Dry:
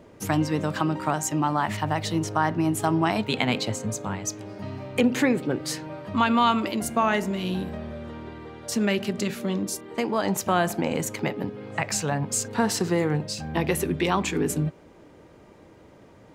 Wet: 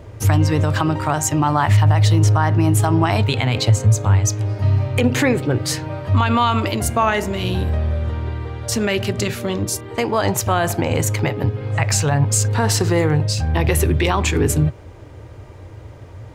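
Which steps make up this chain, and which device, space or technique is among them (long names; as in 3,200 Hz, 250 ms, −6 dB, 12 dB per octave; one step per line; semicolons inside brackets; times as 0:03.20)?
car stereo with a boomy subwoofer (low shelf with overshoot 140 Hz +9.5 dB, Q 3; brickwall limiter −14.5 dBFS, peak gain reduction 7.5 dB)
level +8 dB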